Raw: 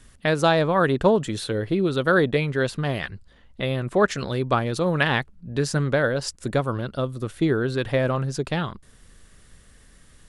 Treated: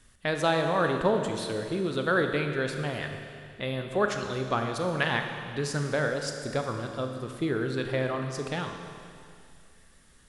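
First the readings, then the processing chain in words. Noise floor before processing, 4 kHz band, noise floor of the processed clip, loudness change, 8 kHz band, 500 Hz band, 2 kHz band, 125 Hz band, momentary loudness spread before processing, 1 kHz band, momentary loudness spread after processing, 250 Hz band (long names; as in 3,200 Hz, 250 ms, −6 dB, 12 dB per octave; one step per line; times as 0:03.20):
−53 dBFS, −4.5 dB, −57 dBFS, −6.0 dB, −4.0 dB, −5.5 dB, −4.5 dB, −7.5 dB, 9 LU, −4.5 dB, 9 LU, −6.5 dB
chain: low-shelf EQ 390 Hz −4 dB
four-comb reverb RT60 2.4 s, combs from 27 ms, DRR 4.5 dB
level −5.5 dB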